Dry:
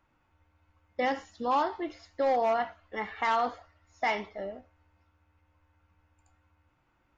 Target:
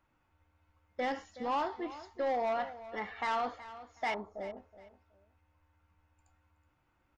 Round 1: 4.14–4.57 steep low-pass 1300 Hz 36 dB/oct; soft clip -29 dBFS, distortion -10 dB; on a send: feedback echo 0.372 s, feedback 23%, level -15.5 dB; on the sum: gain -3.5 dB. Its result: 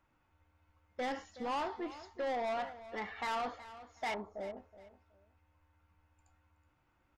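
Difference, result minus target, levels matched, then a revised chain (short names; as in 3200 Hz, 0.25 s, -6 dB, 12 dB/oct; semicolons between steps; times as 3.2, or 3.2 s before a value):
soft clip: distortion +8 dB
4.14–4.57 steep low-pass 1300 Hz 36 dB/oct; soft clip -22.5 dBFS, distortion -17 dB; on a send: feedback echo 0.372 s, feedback 23%, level -15.5 dB; on the sum: gain -3.5 dB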